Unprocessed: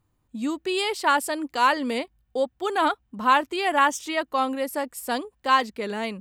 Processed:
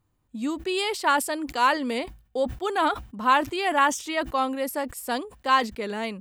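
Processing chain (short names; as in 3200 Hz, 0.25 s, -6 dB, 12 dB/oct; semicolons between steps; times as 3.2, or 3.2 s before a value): sustainer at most 140 dB/s; gain -1 dB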